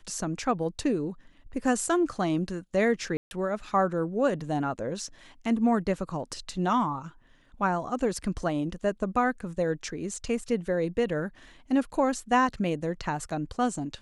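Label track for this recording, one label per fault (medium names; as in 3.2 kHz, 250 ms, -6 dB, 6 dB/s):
3.170000	3.310000	dropout 141 ms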